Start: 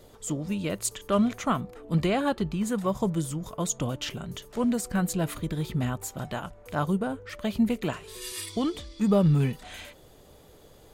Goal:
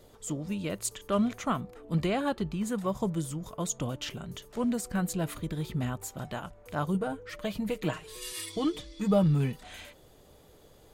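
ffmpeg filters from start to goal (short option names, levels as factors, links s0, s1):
-filter_complex "[0:a]asettb=1/sr,asplit=3[s0][s1][s2];[s0]atrim=end=6.944[s3];[s1]atrim=start=6.94:end=9.24,asetpts=PTS-STARTPTS,afade=t=in:d=0.004:c=qsin,afade=t=out:st=2.296:d=0.004:c=qsin,aecho=1:1:6.4:0.67,atrim=end_sample=101430[s4];[s2]atrim=start=9.236[s5];[s3][s4]acrossfade=d=0.004:c1=hsin:c2=qsin[s6];[s6][s5]acrossfade=d=0.004:c1=qsin:c2=hsin,volume=0.668"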